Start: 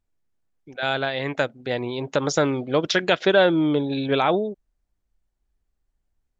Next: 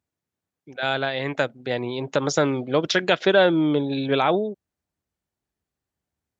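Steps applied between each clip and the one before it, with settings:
high-pass filter 82 Hz 24 dB per octave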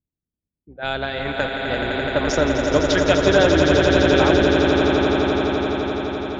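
sub-octave generator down 2 octaves, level −3 dB
low-pass that shuts in the quiet parts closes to 310 Hz, open at −19.5 dBFS
echo that builds up and dies away 85 ms, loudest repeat 8, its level −7 dB
level −1 dB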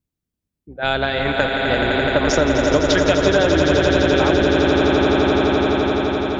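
downward compressor, threshold −17 dBFS, peak gain reduction 7 dB
level +5.5 dB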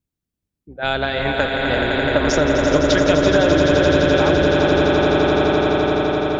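feedback echo with a low-pass in the loop 379 ms, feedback 67%, low-pass 1,400 Hz, level −5 dB
level −1 dB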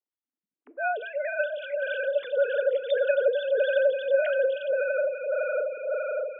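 three sine waves on the formant tracks
convolution reverb RT60 0.40 s, pre-delay 7 ms, DRR 14.5 dB
phaser with staggered stages 1.7 Hz
level −7.5 dB

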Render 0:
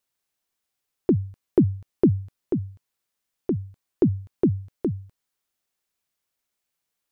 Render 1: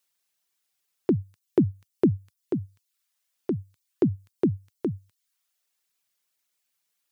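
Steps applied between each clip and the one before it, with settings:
reverb reduction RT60 0.58 s
high-pass filter 93 Hz 24 dB per octave
tilt shelving filter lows −4.5 dB, about 1,200 Hz
level +1.5 dB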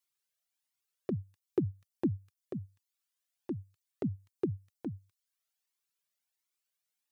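flanger whose copies keep moving one way rising 1.4 Hz
level −4.5 dB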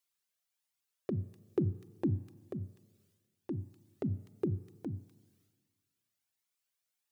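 transient designer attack −1 dB, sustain +8 dB
mains-hum notches 60/120/180/240/300/360 Hz
four-comb reverb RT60 1.6 s, combs from 29 ms, DRR 19 dB

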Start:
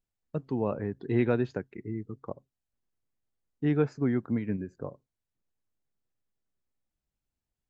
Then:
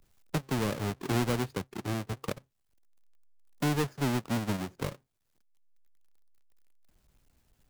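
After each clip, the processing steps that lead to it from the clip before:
each half-wave held at its own peak
multiband upward and downward compressor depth 70%
level −5.5 dB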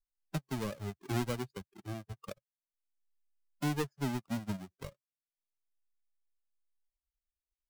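spectral dynamics exaggerated over time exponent 2
level −2 dB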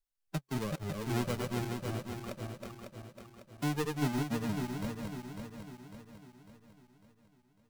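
feedback delay that plays each chunk backwards 275 ms, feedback 69%, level −3 dB

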